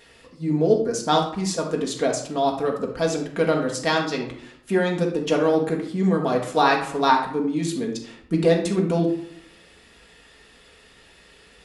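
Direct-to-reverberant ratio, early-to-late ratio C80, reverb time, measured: -0.5 dB, 11.0 dB, 0.65 s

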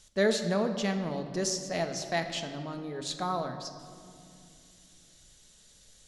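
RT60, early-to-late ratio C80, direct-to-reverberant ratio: 2.5 s, 9.5 dB, 6.0 dB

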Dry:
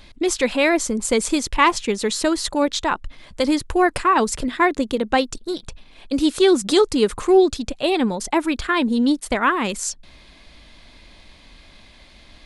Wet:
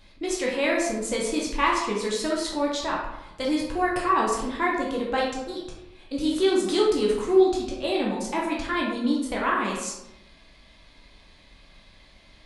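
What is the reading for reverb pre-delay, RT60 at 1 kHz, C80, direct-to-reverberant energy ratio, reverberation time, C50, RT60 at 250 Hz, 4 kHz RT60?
10 ms, 0.90 s, 5.5 dB, -3.5 dB, 0.90 s, 2.5 dB, 0.95 s, 0.55 s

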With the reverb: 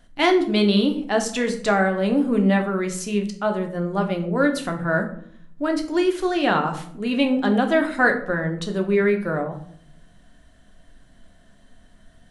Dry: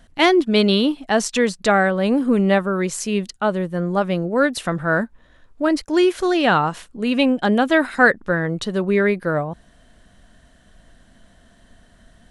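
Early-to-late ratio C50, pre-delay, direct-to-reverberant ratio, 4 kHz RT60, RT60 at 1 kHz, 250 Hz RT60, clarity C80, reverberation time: 11.0 dB, 3 ms, 3.5 dB, 0.35 s, 0.55 s, 0.80 s, 14.0 dB, 0.65 s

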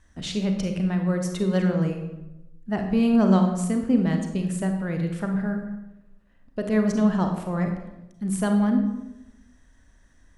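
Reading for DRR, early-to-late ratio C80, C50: 4.0 dB, 8.0 dB, 5.5 dB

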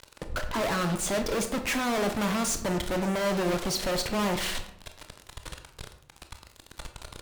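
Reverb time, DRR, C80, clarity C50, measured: 0.70 s, 6.5 dB, 12.5 dB, 10.0 dB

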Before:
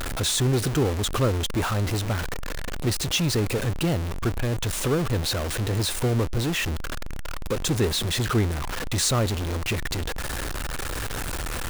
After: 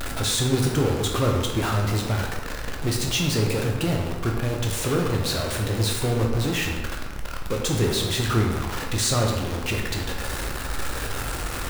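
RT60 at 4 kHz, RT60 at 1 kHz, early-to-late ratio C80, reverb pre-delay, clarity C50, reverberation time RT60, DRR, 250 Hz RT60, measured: 0.80 s, 1.2 s, 5.5 dB, 11 ms, 3.0 dB, 1.1 s, 0.0 dB, 1.0 s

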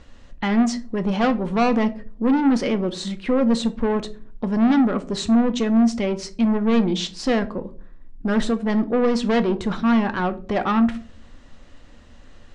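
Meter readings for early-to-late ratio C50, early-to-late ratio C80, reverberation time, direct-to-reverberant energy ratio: 17.5 dB, 22.0 dB, 0.45 s, 9.5 dB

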